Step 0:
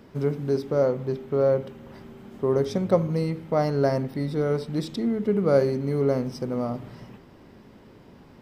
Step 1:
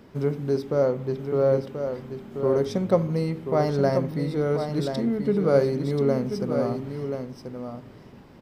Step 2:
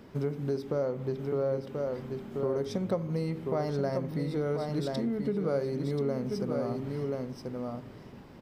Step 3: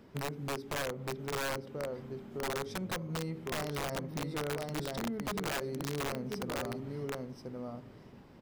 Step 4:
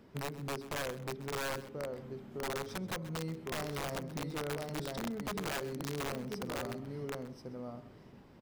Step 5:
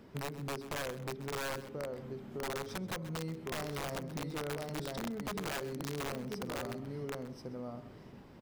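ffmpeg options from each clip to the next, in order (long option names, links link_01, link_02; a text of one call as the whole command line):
ffmpeg -i in.wav -af "aecho=1:1:1033:0.422" out.wav
ffmpeg -i in.wav -af "acompressor=threshold=-28dB:ratio=3,volume=-1dB" out.wav
ffmpeg -i in.wav -af "aeval=exprs='(mod(15.8*val(0)+1,2)-1)/15.8':channel_layout=same,volume=-5.5dB" out.wav
ffmpeg -i in.wav -af "aecho=1:1:130:0.158,volume=-2dB" out.wav
ffmpeg -i in.wav -af "acompressor=threshold=-45dB:ratio=1.5,volume=3dB" out.wav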